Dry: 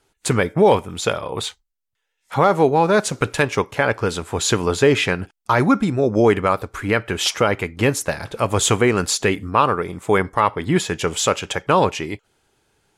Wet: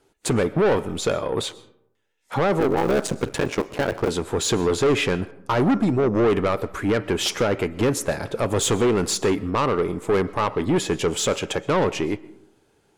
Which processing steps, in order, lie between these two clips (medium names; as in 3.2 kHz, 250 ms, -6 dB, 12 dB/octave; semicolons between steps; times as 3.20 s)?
2.60–4.09 s: cycle switcher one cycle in 3, muted; peaking EQ 340 Hz +8.5 dB 2.3 oct; in parallel at -2 dB: peak limiter -6.5 dBFS, peak gain reduction 10 dB; on the sum: saturation -7.5 dBFS, distortion -9 dB; algorithmic reverb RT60 0.75 s, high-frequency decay 0.45×, pre-delay 85 ms, DRR 19 dB; trim -7.5 dB